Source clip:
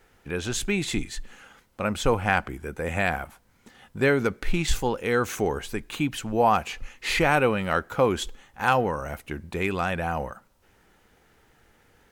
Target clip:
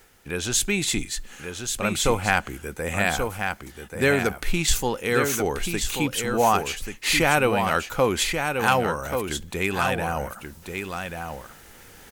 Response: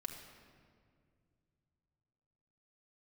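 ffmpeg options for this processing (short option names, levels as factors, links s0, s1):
-af "highshelf=f=3900:g=11.5,areverse,acompressor=mode=upward:threshold=0.0126:ratio=2.5,areverse,aecho=1:1:1134:0.501"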